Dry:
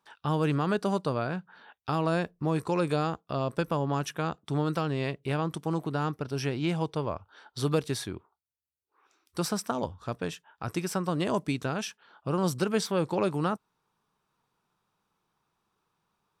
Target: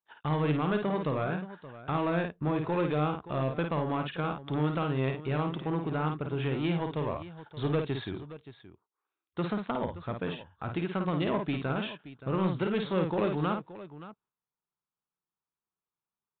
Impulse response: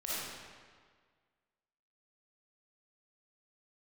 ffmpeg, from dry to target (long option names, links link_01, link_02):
-af "agate=range=-22dB:threshold=-51dB:ratio=16:detection=peak,aresample=8000,asoftclip=type=tanh:threshold=-22.5dB,aresample=44100,aecho=1:1:53|574:0.531|0.178"